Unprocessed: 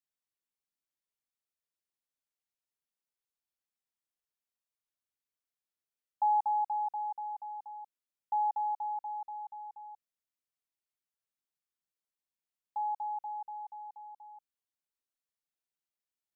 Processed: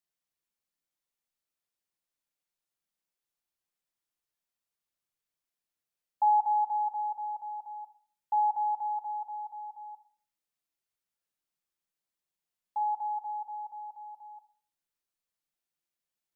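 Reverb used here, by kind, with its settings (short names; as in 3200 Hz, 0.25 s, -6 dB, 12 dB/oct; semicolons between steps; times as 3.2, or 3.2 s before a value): shoebox room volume 610 m³, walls furnished, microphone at 0.84 m; gain +2 dB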